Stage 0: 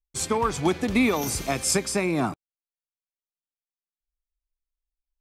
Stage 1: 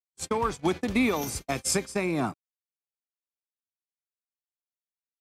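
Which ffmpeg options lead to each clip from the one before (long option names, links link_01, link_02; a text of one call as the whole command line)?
ffmpeg -i in.wav -af "agate=range=-56dB:threshold=-27dB:ratio=16:detection=peak,volume=-3dB" out.wav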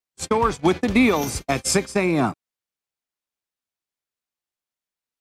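ffmpeg -i in.wav -af "highshelf=frequency=7900:gain=-6.5,volume=7.5dB" out.wav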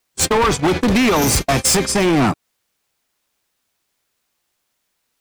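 ffmpeg -i in.wav -af "apsyclip=13.5dB,acompressor=threshold=-12dB:ratio=6,asoftclip=type=hard:threshold=-18dB,volume=5.5dB" out.wav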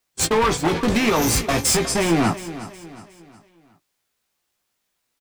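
ffmpeg -i in.wav -filter_complex "[0:a]asplit=2[link_01][link_02];[link_02]adelay=18,volume=-6dB[link_03];[link_01][link_03]amix=inputs=2:normalize=0,aecho=1:1:363|726|1089|1452:0.188|0.0791|0.0332|0.014,volume=-4.5dB" out.wav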